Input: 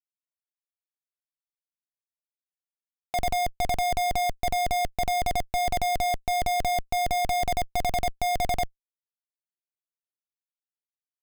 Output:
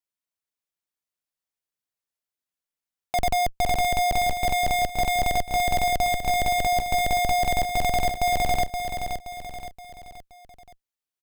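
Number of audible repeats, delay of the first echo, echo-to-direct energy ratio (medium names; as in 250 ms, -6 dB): 4, 523 ms, -6.0 dB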